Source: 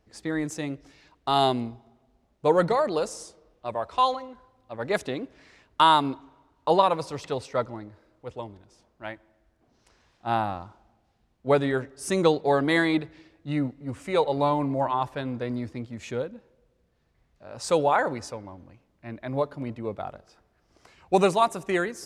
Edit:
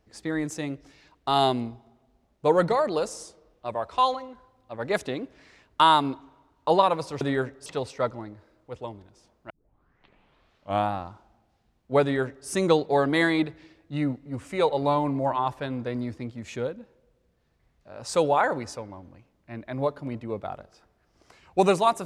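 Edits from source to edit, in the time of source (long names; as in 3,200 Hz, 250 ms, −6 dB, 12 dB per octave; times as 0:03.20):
0:09.05: tape start 1.43 s
0:11.57–0:12.02: duplicate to 0:07.21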